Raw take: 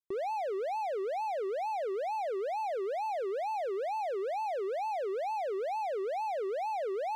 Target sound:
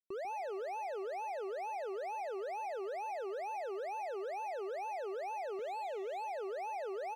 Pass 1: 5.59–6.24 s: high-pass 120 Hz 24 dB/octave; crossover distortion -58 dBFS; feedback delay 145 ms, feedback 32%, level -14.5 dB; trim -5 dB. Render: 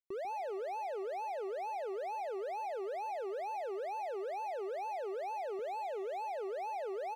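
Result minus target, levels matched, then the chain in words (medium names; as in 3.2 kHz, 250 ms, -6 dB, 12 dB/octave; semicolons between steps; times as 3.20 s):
crossover distortion: distortion -10 dB
5.59–6.24 s: high-pass 120 Hz 24 dB/octave; crossover distortion -48.5 dBFS; feedback delay 145 ms, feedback 32%, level -14.5 dB; trim -5 dB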